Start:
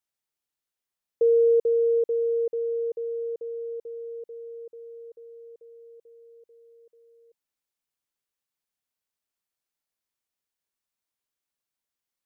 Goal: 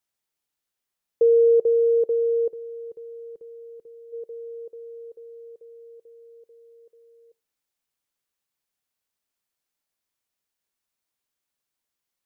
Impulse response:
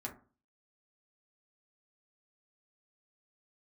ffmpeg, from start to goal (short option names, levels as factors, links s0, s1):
-filter_complex "[0:a]asplit=3[s0][s1][s2];[s0]afade=t=out:st=2.49:d=0.02[s3];[s1]equalizer=f=580:t=o:w=1.5:g=-13.5,afade=t=in:st=2.49:d=0.02,afade=t=out:st=4.12:d=0.02[s4];[s2]afade=t=in:st=4.12:d=0.02[s5];[s3][s4][s5]amix=inputs=3:normalize=0,asplit=2[s6][s7];[s7]bandpass=f=560:t=q:w=1:csg=0[s8];[1:a]atrim=start_sample=2205,adelay=12[s9];[s8][s9]afir=irnorm=-1:irlink=0,volume=0.0944[s10];[s6][s10]amix=inputs=2:normalize=0,volume=1.5"